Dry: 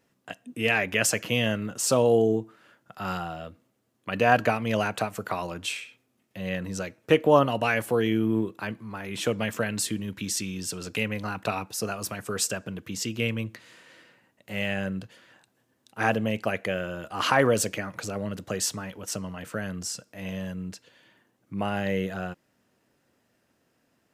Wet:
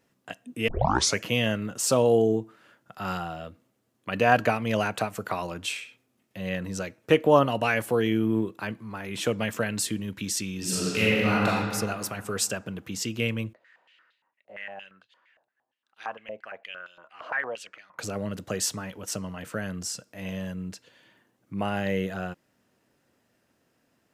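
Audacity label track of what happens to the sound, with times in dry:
0.680000	0.680000	tape start 0.51 s
10.570000	11.460000	thrown reverb, RT60 2.2 s, DRR −7.5 dB
13.530000	17.990000	band-pass on a step sequencer 8.7 Hz 620–3,700 Hz

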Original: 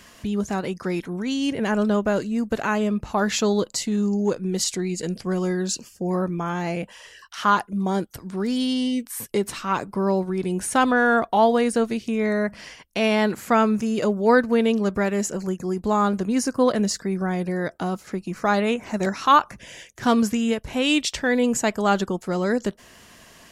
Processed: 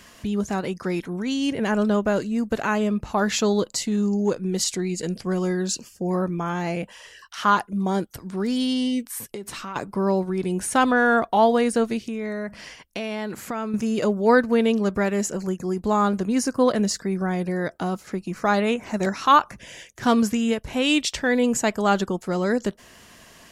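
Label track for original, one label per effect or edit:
9.180000	9.760000	downward compressor 8 to 1, threshold −30 dBFS
12.000000	13.740000	downward compressor 5 to 1, threshold −26 dBFS

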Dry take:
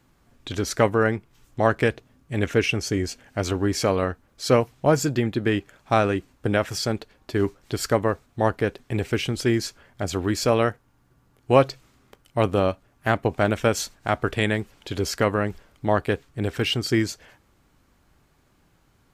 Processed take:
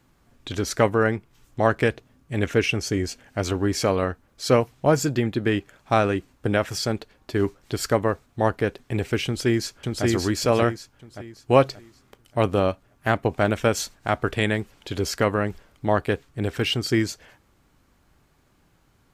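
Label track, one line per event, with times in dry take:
9.250000	10.050000	delay throw 580 ms, feedback 35%, level −1.5 dB

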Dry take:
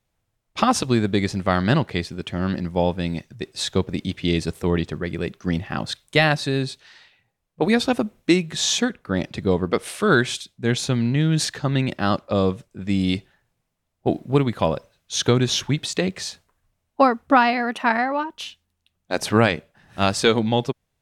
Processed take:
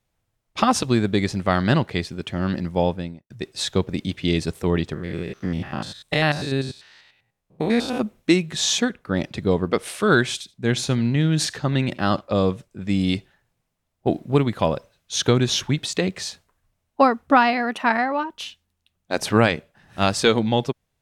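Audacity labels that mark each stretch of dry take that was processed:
2.830000	3.300000	fade out and dull
4.940000	8.010000	spectrum averaged block by block every 100 ms
10.320000	12.210000	single-tap delay 78 ms −21.5 dB

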